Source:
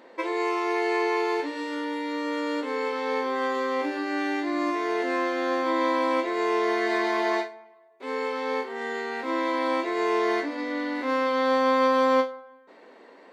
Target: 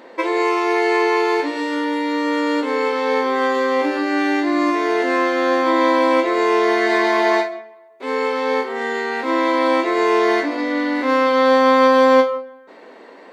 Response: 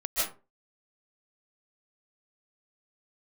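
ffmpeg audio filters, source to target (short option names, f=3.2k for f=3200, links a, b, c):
-filter_complex "[0:a]asplit=2[a][b];[b]highshelf=f=3.8k:g=-11.5[c];[1:a]atrim=start_sample=2205[d];[c][d]afir=irnorm=-1:irlink=0,volume=-22.5dB[e];[a][e]amix=inputs=2:normalize=0,volume=8dB"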